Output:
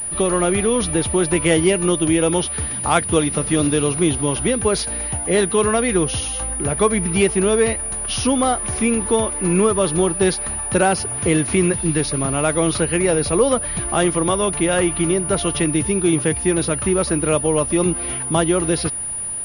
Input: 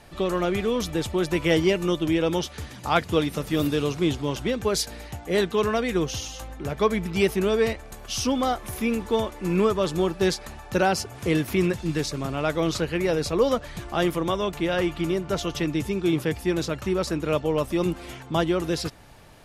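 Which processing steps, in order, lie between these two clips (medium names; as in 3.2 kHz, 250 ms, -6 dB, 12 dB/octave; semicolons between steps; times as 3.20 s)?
compression 1.5:1, threshold -27 dBFS, peak gain reduction 4.5 dB; class-D stage that switches slowly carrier 9.7 kHz; trim +8.5 dB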